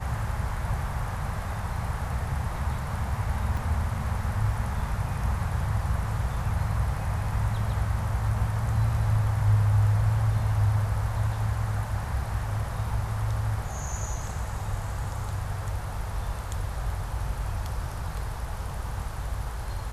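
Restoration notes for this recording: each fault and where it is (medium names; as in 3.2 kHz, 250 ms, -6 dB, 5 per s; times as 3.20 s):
3.57 s: dropout 3.4 ms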